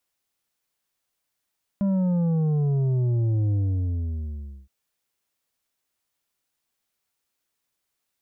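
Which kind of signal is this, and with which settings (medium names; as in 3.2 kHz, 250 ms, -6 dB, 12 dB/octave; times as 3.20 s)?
sub drop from 200 Hz, over 2.87 s, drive 7 dB, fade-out 1.16 s, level -20.5 dB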